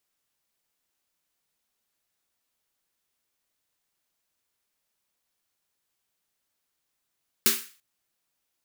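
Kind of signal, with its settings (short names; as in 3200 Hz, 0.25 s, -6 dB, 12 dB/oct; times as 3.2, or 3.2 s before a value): snare drum length 0.34 s, tones 230 Hz, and 390 Hz, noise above 1300 Hz, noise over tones 11 dB, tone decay 0.28 s, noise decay 0.40 s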